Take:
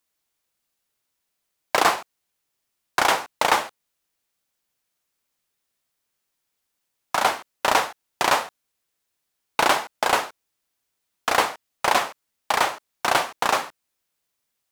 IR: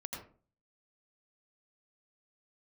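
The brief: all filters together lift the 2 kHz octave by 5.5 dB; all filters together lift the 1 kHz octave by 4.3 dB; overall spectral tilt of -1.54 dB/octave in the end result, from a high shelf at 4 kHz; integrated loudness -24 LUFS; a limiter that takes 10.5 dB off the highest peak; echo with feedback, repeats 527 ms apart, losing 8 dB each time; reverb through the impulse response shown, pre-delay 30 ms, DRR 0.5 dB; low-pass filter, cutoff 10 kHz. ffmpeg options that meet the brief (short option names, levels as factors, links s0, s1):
-filter_complex "[0:a]lowpass=10000,equalizer=f=1000:t=o:g=4,equalizer=f=2000:t=o:g=6.5,highshelf=f=4000:g=-4,alimiter=limit=0.316:level=0:latency=1,aecho=1:1:527|1054|1581|2108|2635:0.398|0.159|0.0637|0.0255|0.0102,asplit=2[s0][s1];[1:a]atrim=start_sample=2205,adelay=30[s2];[s1][s2]afir=irnorm=-1:irlink=0,volume=1[s3];[s0][s3]amix=inputs=2:normalize=0,volume=0.841"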